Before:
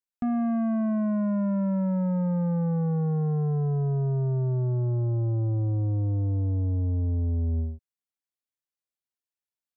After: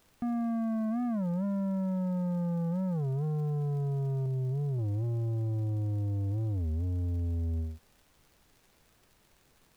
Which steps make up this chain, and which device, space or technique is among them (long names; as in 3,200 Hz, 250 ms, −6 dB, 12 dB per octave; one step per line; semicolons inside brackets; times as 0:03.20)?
0:04.26–0:04.81: Bessel low-pass filter 530 Hz
warped LP (wow of a warped record 33 1/3 rpm, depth 250 cents; surface crackle; pink noise bed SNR 34 dB)
level −5.5 dB